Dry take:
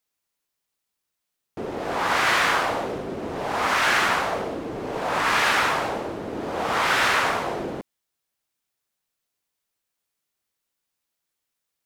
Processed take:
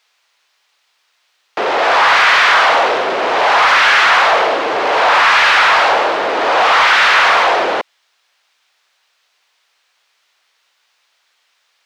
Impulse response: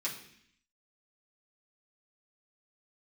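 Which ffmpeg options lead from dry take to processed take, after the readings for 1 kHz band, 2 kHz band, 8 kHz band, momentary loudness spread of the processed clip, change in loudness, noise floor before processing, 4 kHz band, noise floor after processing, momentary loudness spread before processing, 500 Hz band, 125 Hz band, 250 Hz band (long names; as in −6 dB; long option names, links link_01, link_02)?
+13.0 dB, +13.0 dB, +5.0 dB, 7 LU, +12.5 dB, −82 dBFS, +13.0 dB, −63 dBFS, 12 LU, +11.5 dB, can't be measured, +2.0 dB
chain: -filter_complex "[0:a]crystalizer=i=3.5:c=0,asplit=2[link_01][link_02];[link_02]highpass=frequency=720:poles=1,volume=28dB,asoftclip=type=tanh:threshold=-4.5dB[link_03];[link_01][link_03]amix=inputs=2:normalize=0,lowpass=frequency=2100:poles=1,volume=-6dB,acrossover=split=480 5200:gain=0.141 1 0.0708[link_04][link_05][link_06];[link_04][link_05][link_06]amix=inputs=3:normalize=0,volume=4dB"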